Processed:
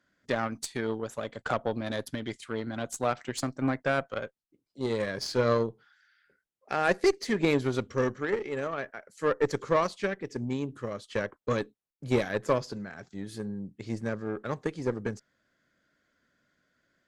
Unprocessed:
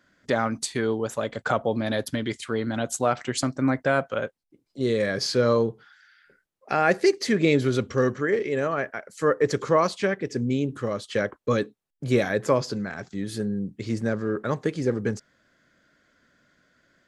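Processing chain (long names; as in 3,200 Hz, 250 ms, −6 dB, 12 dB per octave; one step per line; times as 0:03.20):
harmonic generator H 4 −22 dB, 7 −24 dB, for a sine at −7.5 dBFS
level −4 dB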